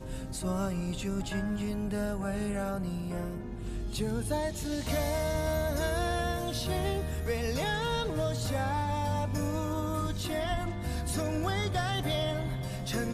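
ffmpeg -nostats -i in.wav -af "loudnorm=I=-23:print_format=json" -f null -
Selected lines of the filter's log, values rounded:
"input_i" : "-32.3",
"input_tp" : "-19.5",
"input_lra" : "2.4",
"input_thresh" : "-42.3",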